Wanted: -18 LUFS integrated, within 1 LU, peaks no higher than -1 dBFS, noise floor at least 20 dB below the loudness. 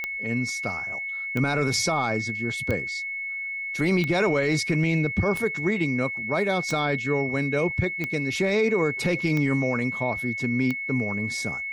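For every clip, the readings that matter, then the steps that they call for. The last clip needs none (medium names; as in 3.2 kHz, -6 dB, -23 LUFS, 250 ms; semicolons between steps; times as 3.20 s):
clicks found 9; steady tone 2.2 kHz; tone level -29 dBFS; loudness -25.0 LUFS; peak level -12.5 dBFS; loudness target -18.0 LUFS
-> de-click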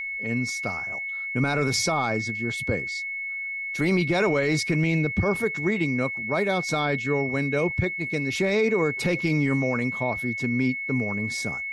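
clicks found 0; steady tone 2.2 kHz; tone level -29 dBFS
-> band-stop 2.2 kHz, Q 30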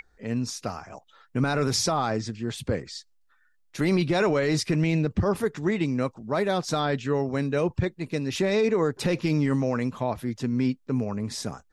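steady tone not found; loudness -26.5 LUFS; peak level -14.5 dBFS; loudness target -18.0 LUFS
-> trim +8.5 dB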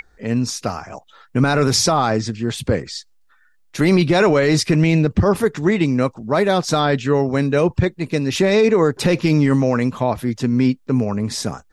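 loudness -18.0 LUFS; peak level -6.0 dBFS; noise floor -55 dBFS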